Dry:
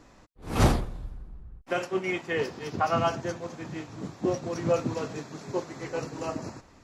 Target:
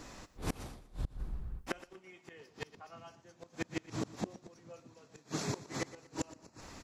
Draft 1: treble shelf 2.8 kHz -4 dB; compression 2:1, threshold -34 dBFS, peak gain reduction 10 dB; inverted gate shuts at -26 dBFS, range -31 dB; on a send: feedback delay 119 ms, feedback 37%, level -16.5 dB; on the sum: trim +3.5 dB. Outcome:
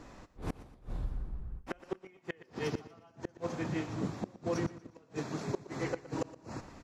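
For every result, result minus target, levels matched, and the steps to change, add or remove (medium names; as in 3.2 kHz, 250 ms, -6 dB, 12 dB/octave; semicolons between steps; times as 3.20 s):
compression: peak gain reduction +10 dB; 4 kHz band -5.5 dB
remove: compression 2:1, threshold -34 dBFS, peak gain reduction 10 dB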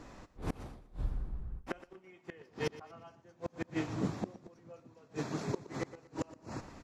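4 kHz band -5.5 dB
change: treble shelf 2.8 kHz +8 dB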